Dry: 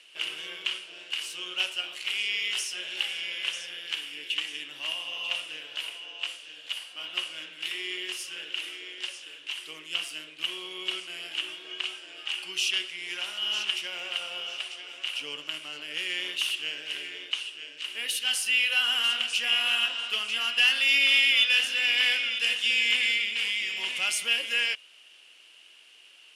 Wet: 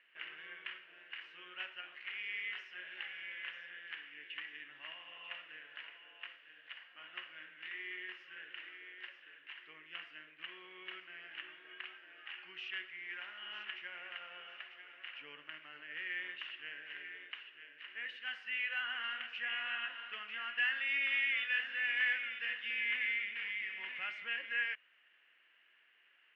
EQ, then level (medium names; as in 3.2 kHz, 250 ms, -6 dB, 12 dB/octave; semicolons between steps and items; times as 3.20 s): four-pole ladder low-pass 2 kHz, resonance 65%; peaking EQ 500 Hz -4 dB 2.6 oct; 0.0 dB